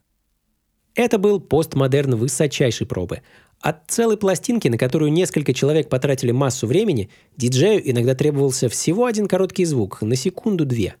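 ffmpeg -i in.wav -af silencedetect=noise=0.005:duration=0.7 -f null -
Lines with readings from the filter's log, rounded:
silence_start: 0.00
silence_end: 0.96 | silence_duration: 0.96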